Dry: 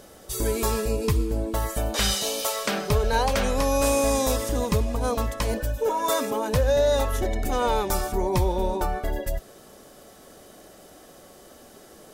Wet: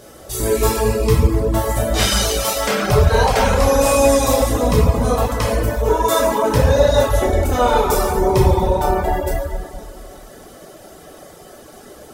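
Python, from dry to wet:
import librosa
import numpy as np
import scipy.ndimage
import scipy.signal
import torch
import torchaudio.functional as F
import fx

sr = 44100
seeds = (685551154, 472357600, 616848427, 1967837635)

y = fx.rev_plate(x, sr, seeds[0], rt60_s=2.1, hf_ratio=0.5, predelay_ms=0, drr_db=-5.5)
y = fx.dereverb_blind(y, sr, rt60_s=0.53)
y = F.gain(torch.from_numpy(y), 3.0).numpy()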